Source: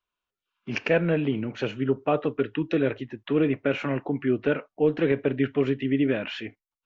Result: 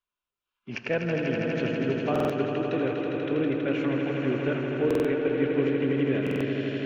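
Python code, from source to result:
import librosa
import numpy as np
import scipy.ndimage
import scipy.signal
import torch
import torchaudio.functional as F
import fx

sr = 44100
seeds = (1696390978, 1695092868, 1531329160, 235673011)

y = fx.echo_swell(x, sr, ms=81, loudest=5, wet_db=-7.0)
y = fx.buffer_glitch(y, sr, at_s=(2.11, 4.86, 6.22), block=2048, repeats=3)
y = y * 10.0 ** (-5.5 / 20.0)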